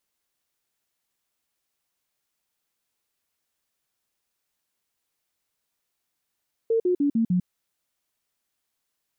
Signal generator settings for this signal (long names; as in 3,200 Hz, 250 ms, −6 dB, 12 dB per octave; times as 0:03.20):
stepped sweep 454 Hz down, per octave 3, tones 5, 0.10 s, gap 0.05 s −18.5 dBFS